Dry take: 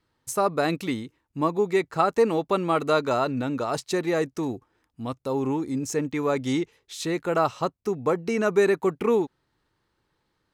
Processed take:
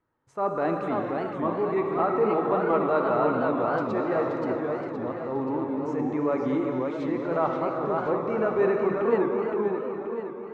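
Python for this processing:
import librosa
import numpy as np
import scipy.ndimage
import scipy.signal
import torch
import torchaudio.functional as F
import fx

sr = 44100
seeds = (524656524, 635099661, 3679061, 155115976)

y = scipy.signal.sosfilt(scipy.signal.butter(2, 1300.0, 'lowpass', fs=sr, output='sos'), x)
y = fx.low_shelf(y, sr, hz=230.0, db=-8.5)
y = fx.rev_gated(y, sr, seeds[0], gate_ms=490, shape='flat', drr_db=3.0)
y = fx.transient(y, sr, attack_db=-6, sustain_db=1)
y = fx.echo_warbled(y, sr, ms=524, feedback_pct=50, rate_hz=2.8, cents=202, wet_db=-4)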